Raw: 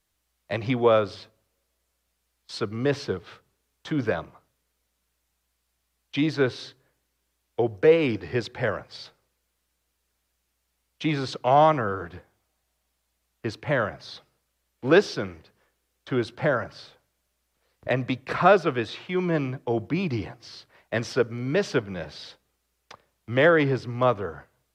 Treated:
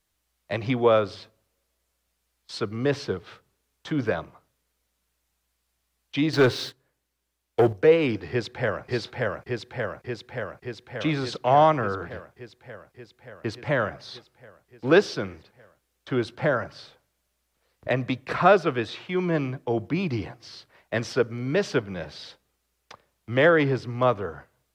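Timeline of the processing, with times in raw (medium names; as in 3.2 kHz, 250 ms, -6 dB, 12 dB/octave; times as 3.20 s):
6.33–7.73 s: waveshaping leveller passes 2
8.30–8.85 s: echo throw 580 ms, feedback 75%, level -1 dB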